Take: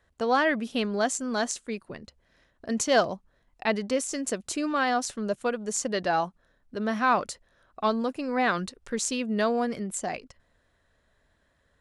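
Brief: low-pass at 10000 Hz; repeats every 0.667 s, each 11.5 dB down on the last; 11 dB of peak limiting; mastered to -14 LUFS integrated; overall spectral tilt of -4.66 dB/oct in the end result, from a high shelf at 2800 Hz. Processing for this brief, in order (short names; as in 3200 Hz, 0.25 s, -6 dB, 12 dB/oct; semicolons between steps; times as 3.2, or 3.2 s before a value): LPF 10000 Hz; high shelf 2800 Hz -9 dB; limiter -21.5 dBFS; feedback echo 0.667 s, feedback 27%, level -11.5 dB; gain +18 dB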